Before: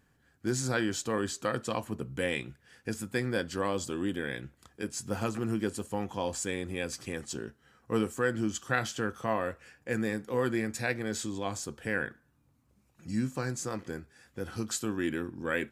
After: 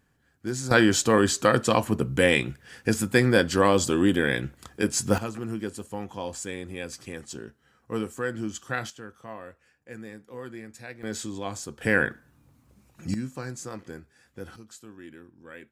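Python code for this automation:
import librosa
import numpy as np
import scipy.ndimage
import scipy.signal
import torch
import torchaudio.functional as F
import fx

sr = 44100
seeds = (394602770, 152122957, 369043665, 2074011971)

y = fx.gain(x, sr, db=fx.steps((0.0, 0.0), (0.71, 11.0), (5.18, -1.0), (8.9, -10.0), (11.03, 1.0), (11.81, 9.5), (13.14, -2.0), (14.56, -13.5)))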